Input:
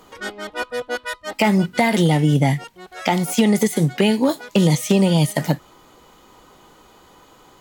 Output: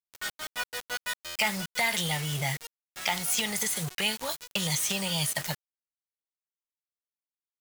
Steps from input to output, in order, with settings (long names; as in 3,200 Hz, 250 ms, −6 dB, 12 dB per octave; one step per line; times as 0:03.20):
guitar amp tone stack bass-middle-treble 10-0-10
bit reduction 6 bits
buffer that repeats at 0:01.25, samples 512, times 8